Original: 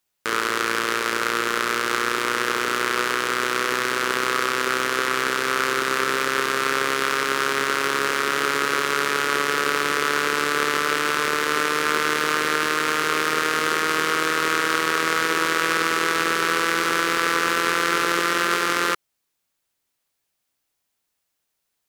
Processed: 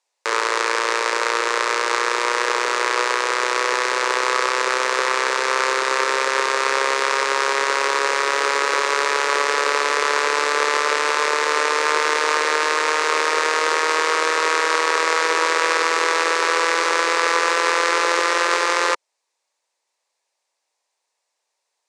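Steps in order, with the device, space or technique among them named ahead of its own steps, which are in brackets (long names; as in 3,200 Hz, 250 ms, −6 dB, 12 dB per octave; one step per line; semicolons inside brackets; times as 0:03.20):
phone speaker on a table (loudspeaker in its box 430–8,200 Hz, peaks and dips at 540 Hz +4 dB, 930 Hz +7 dB, 1,400 Hz −7 dB, 3,100 Hz −6 dB)
level +4.5 dB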